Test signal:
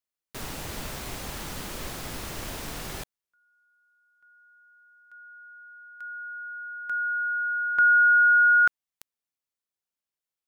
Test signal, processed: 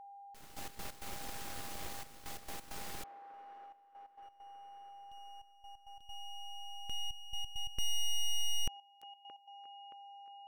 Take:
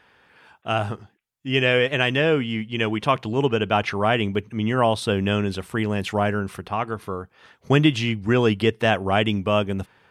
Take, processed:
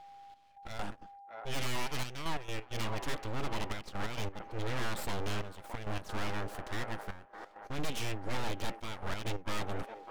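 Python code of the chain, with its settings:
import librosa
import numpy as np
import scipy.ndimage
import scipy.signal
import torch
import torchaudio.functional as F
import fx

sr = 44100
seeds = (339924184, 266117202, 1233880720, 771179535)

y = np.abs(x)
y = fx.echo_wet_bandpass(y, sr, ms=623, feedback_pct=64, hz=800.0, wet_db=-12)
y = y + 10.0 ** (-44.0 / 20.0) * np.sin(2.0 * np.pi * 800.0 * np.arange(len(y)) / sr)
y = fx.step_gate(y, sr, bpm=133, pattern='xxx..x.x.xxxxxx', floor_db=-12.0, edge_ms=4.5)
y = 10.0 ** (-20.0 / 20.0) * np.tanh(y / 10.0 ** (-20.0 / 20.0))
y = y * 10.0 ** (-6.0 / 20.0)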